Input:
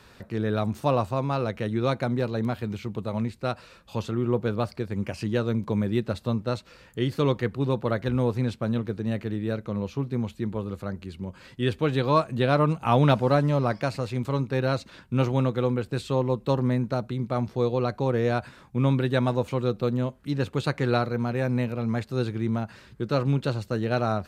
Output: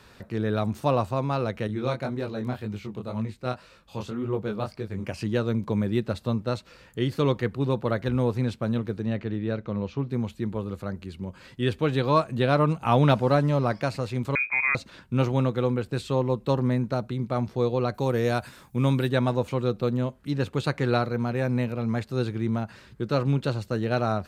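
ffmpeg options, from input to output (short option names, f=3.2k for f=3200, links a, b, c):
-filter_complex "[0:a]asettb=1/sr,asplit=3[a][b][c];[a]atrim=end=1.674[d];[b]atrim=start=1.67:end=5.05,asetpts=PTS-STARTPTS,afade=t=in:d=0.004:c=qsin,afade=t=out:st=3.376:d=0.004:c=qsin,flanger=delay=18.5:depth=5.6:speed=1.9[e];[c]atrim=start=5.046[f];[d][e]acrossfade=d=0.004:c1=hsin:c2=qsin[g];[g][f]acrossfade=d=0.004:c1=qsin:c2=hsin,asettb=1/sr,asplit=3[h][i][j];[h]atrim=end=9.064[k];[i]atrim=start=9.06:end=10.09,asetpts=PTS-STARTPTS,afade=t=in:d=0.004:c=qsin,afade=t=out:st=1.026:d=0.004:c=qsin,lowpass=4.7k[l];[j]atrim=start=10.086[m];[k][l]acrossfade=d=0.004:c1=hsin:c2=qsin[n];[n][m]acrossfade=d=0.004:c1=qsin:c2=hsin,asettb=1/sr,asplit=3[o][p][q];[o]atrim=end=14.354[r];[p]atrim=start=14.35:end=14.75,asetpts=PTS-STARTPTS,afade=t=in:d=0.004:c=qsin,afade=t=out:st=0.396:d=0.004:c=qsin,lowpass=f=2.2k:t=q:w=0.5098,lowpass=f=2.2k:t=q:w=0.6013,lowpass=f=2.2k:t=q:w=0.9,lowpass=f=2.2k:t=q:w=2.563,afreqshift=-2600[s];[q]atrim=start=14.746[t];[r][s]acrossfade=d=0.004:c1=hsin:c2=qsin[u];[u][t]acrossfade=d=0.004:c1=qsin:c2=hsin,asettb=1/sr,asplit=3[v][w][x];[v]atrim=end=17.944[y];[w]atrim=start=17.94:end=19.09,asetpts=PTS-STARTPTS,afade=t=in:d=0.004:c=qsin,afade=t=out:st=1.146:d=0.004:c=qsin,aemphasis=mode=production:type=50fm[z];[x]atrim=start=19.086[aa];[y][z]acrossfade=d=0.004:c1=hsin:c2=qsin[ab];[ab][aa]acrossfade=d=0.004:c1=qsin:c2=hsin"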